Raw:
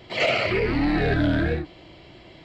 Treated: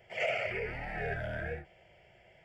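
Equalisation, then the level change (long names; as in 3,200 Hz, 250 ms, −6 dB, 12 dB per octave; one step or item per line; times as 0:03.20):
low-shelf EQ 200 Hz −7 dB
phaser with its sweep stopped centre 1,100 Hz, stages 6
−8.5 dB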